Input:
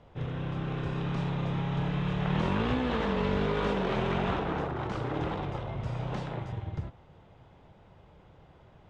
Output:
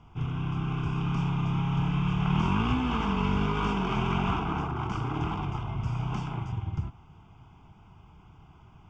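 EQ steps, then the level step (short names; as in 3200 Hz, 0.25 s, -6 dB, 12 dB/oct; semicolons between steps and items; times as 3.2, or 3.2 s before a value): fixed phaser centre 2700 Hz, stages 8; +4.5 dB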